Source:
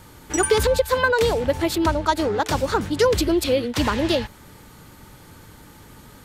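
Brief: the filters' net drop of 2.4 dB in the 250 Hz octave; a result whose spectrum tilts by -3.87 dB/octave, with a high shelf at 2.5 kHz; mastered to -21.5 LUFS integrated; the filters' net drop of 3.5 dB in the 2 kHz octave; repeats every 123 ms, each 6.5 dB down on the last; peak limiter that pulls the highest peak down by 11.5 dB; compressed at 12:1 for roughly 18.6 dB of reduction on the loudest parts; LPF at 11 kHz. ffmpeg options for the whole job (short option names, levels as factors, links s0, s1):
-af "lowpass=11000,equalizer=f=250:t=o:g=-3.5,equalizer=f=2000:t=o:g=-8,highshelf=f=2500:g=6,acompressor=threshold=0.0224:ratio=12,alimiter=level_in=2:limit=0.0631:level=0:latency=1,volume=0.501,aecho=1:1:123|246|369|492|615|738:0.473|0.222|0.105|0.0491|0.0231|0.0109,volume=7.5"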